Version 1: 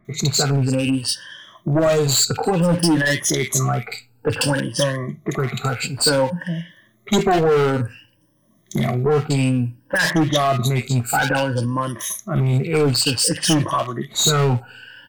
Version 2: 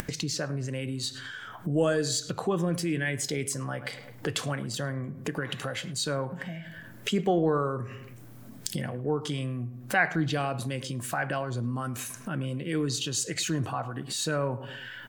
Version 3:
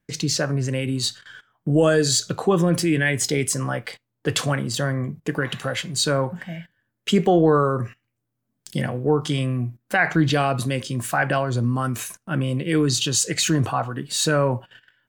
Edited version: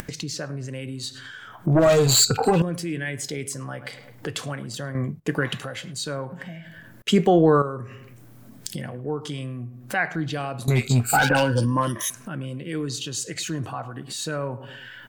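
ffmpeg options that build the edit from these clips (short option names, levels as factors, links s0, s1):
-filter_complex "[0:a]asplit=2[s0][s1];[2:a]asplit=2[s2][s3];[1:a]asplit=5[s4][s5][s6][s7][s8];[s4]atrim=end=1.672[s9];[s0]atrim=start=1.668:end=2.622[s10];[s5]atrim=start=2.618:end=4.952[s11];[s2]atrim=start=4.948:end=5.582[s12];[s6]atrim=start=5.578:end=7.022[s13];[s3]atrim=start=7.018:end=7.622[s14];[s7]atrim=start=7.618:end=10.682[s15];[s1]atrim=start=10.678:end=12.102[s16];[s8]atrim=start=12.098[s17];[s9][s10]acrossfade=d=0.004:c1=hsin:c2=hsin[s18];[s18][s11]acrossfade=d=0.004:c1=hsin:c2=hsin[s19];[s19][s12]acrossfade=d=0.004:c1=hsin:c2=hsin[s20];[s20][s13]acrossfade=d=0.004:c1=hsin:c2=hsin[s21];[s21][s14]acrossfade=d=0.004:c1=hsin:c2=hsin[s22];[s22][s15]acrossfade=d=0.004:c1=hsin:c2=hsin[s23];[s23][s16]acrossfade=d=0.004:c1=hsin:c2=hsin[s24];[s24][s17]acrossfade=d=0.004:c1=hsin:c2=hsin"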